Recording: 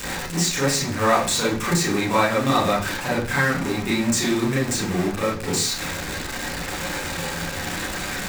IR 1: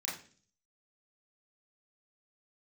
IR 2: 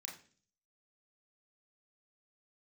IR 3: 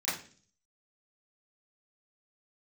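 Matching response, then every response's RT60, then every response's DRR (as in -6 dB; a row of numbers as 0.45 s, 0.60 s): 1; 0.45 s, 0.45 s, 0.45 s; -6.5 dB, -2.0 dB, -13.5 dB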